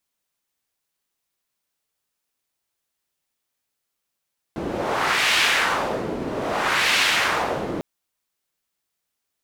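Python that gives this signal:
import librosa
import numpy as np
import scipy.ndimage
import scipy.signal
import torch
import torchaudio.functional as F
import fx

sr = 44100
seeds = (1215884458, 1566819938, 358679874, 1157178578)

y = fx.wind(sr, seeds[0], length_s=3.25, low_hz=340.0, high_hz=2600.0, q=1.3, gusts=2, swing_db=9)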